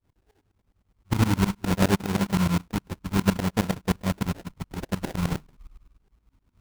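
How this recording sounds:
phaser sweep stages 6, 0.6 Hz, lowest notch 530–1,200 Hz
tremolo saw up 9.7 Hz, depth 95%
aliases and images of a low sample rate 1,200 Hz, jitter 20%

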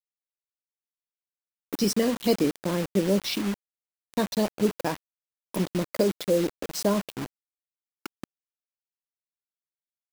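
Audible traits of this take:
a quantiser's noise floor 6 bits, dither none

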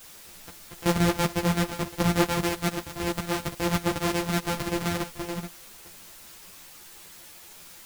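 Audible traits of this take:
a buzz of ramps at a fixed pitch in blocks of 256 samples
chopped level 7 Hz, depth 60%, duty 75%
a quantiser's noise floor 8 bits, dither triangular
a shimmering, thickened sound

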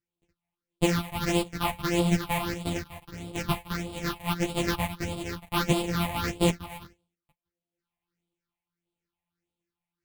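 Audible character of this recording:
a buzz of ramps at a fixed pitch in blocks of 256 samples
phaser sweep stages 6, 1.6 Hz, lowest notch 370–1,700 Hz
sample-and-hold tremolo
a shimmering, thickened sound

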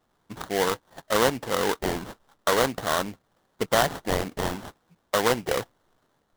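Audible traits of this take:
aliases and images of a low sample rate 2,500 Hz, jitter 20%

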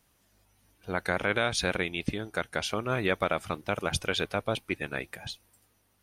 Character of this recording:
background noise floor −69 dBFS
spectral slope −4.0 dB per octave

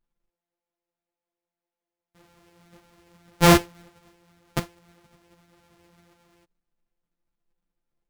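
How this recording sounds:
a buzz of ramps at a fixed pitch in blocks of 256 samples
a shimmering, thickened sound

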